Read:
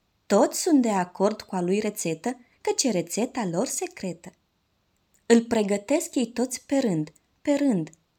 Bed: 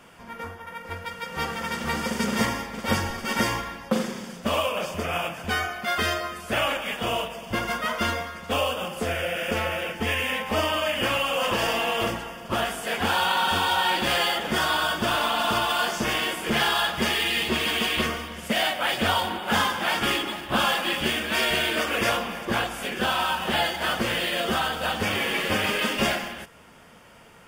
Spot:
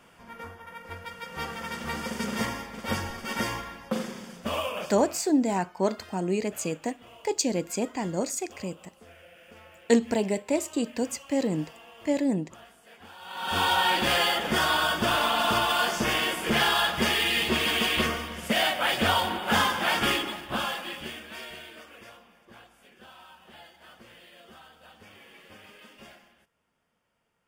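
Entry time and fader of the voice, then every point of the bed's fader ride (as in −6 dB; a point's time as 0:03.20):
4.60 s, −3.0 dB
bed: 0:04.82 −5.5 dB
0:05.25 −24.5 dB
0:13.18 −24.5 dB
0:13.60 −0.5 dB
0:20.08 −0.5 dB
0:22.13 −26 dB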